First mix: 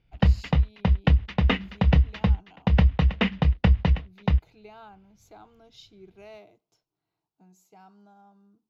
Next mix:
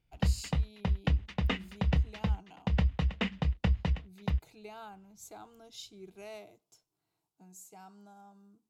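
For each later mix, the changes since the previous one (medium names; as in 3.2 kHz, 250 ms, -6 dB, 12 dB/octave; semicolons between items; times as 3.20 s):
background -9.0 dB; master: remove boxcar filter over 5 samples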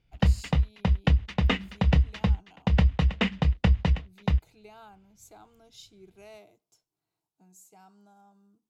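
speech -3.0 dB; background +6.5 dB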